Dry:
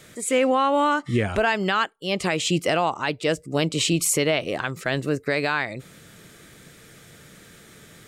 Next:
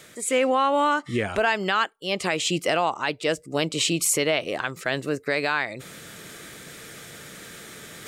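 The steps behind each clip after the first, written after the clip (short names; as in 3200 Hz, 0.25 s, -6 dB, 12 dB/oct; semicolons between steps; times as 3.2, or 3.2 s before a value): reverse; upward compressor, threshold -31 dBFS; reverse; low shelf 200 Hz -9.5 dB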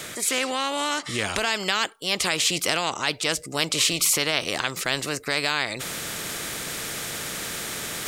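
dynamic EQ 4200 Hz, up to +7 dB, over -40 dBFS, Q 0.73; spectral compressor 2:1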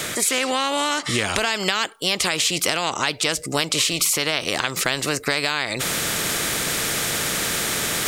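compressor, threshold -26 dBFS, peak gain reduction 9 dB; gain +8.5 dB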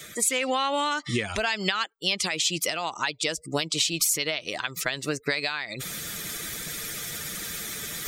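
per-bin expansion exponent 2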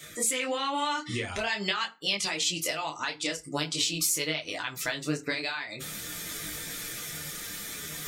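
FDN reverb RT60 0.31 s, low-frequency decay 1.25×, high-frequency decay 0.75×, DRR 8.5 dB; detuned doubles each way 16 cents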